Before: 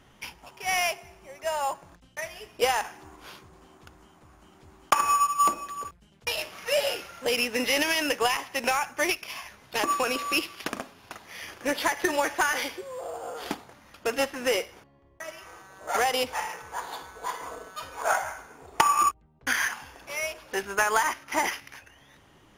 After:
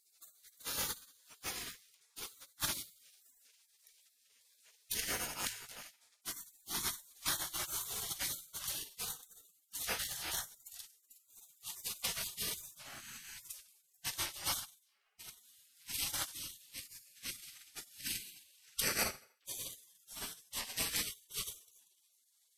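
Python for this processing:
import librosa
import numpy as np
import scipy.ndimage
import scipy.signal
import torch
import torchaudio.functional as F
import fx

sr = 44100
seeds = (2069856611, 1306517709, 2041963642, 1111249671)

y = fx.pitch_glide(x, sr, semitones=-3.0, runs='starting unshifted')
y = fx.rev_fdn(y, sr, rt60_s=0.49, lf_ratio=1.1, hf_ratio=0.95, size_ms=28.0, drr_db=8.0)
y = fx.spec_gate(y, sr, threshold_db=-30, keep='weak')
y = y * 10.0 ** (5.5 / 20.0)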